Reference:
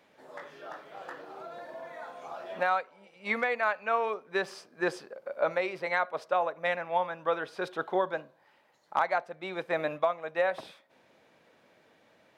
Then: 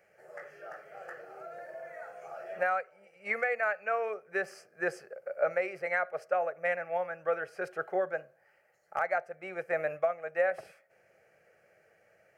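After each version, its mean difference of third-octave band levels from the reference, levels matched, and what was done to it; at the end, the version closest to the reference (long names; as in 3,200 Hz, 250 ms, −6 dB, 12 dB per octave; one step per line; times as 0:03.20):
4.0 dB: phaser with its sweep stopped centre 990 Hz, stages 6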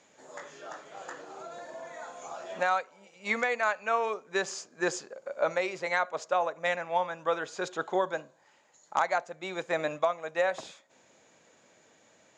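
2.0 dB: low-pass with resonance 6,900 Hz, resonance Q 13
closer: second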